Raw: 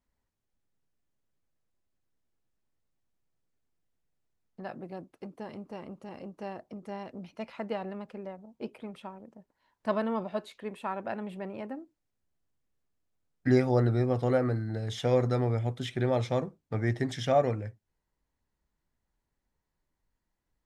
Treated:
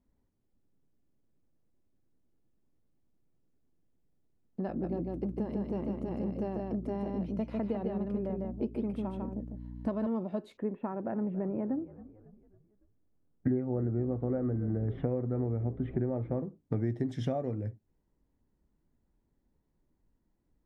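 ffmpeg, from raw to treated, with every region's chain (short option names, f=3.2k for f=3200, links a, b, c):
-filter_complex "[0:a]asettb=1/sr,asplit=3[a][b][c];[a]atrim=end=4.684[d];[b]atrim=start=4.68:end=10.07,asetpts=PTS-STARTPTS,afade=t=in:d=0.004:c=qsin,afade=t=out:st=5.386:d=0.004:c=qsin,aeval=exprs='val(0)+0.002*(sin(2*PI*60*n/s)+sin(2*PI*2*60*n/s)/2+sin(2*PI*3*60*n/s)/3+sin(2*PI*4*60*n/s)/4+sin(2*PI*5*60*n/s)/5)':c=same,aecho=1:1:150:0.631,atrim=end_sample=237699[e];[c]atrim=start=10.066[f];[d][e]acrossfade=d=0.004:c1=hsin:c2=qsin[g];[g][f]acrossfade=d=0.004:c1=qsin:c2=hsin,asettb=1/sr,asplit=3[h][i][j];[h]atrim=end=10.574[k];[i]atrim=start=10.57:end=16.43,asetpts=PTS-STARTPTS,afade=t=in:d=0.004:c=qsin,afade=t=out:st=5.856:d=0.004:c=qsin,lowpass=f=2k:w=0.5412,lowpass=f=2k:w=1.3066,asplit=5[l][m][n][o][p];[m]adelay=276,afreqshift=-54,volume=-21dB[q];[n]adelay=552,afreqshift=-108,volume=-27.2dB[r];[o]adelay=828,afreqshift=-162,volume=-33.4dB[s];[p]adelay=1104,afreqshift=-216,volume=-39.6dB[t];[l][q][r][s][t]amix=inputs=5:normalize=0,atrim=end_sample=258426[u];[j]atrim=start=16.426[v];[k][u]acrossfade=d=0.004:c1=hsin:c2=qsin[w];[w][v]acrossfade=d=0.004:c1=qsin:c2=hsin,equalizer=f=280:t=o:w=1.4:g=6.5,acompressor=threshold=-34dB:ratio=6,tiltshelf=f=830:g=7"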